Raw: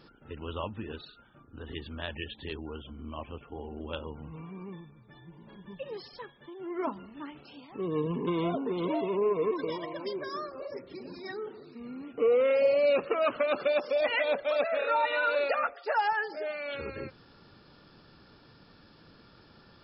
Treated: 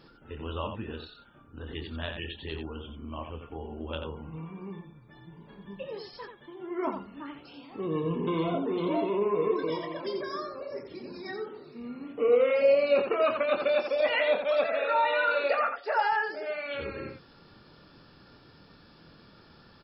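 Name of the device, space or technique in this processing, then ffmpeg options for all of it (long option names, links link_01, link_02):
slapback doubling: -filter_complex "[0:a]asplit=3[link_01][link_02][link_03];[link_02]adelay=25,volume=-7dB[link_04];[link_03]adelay=87,volume=-6.5dB[link_05];[link_01][link_04][link_05]amix=inputs=3:normalize=0"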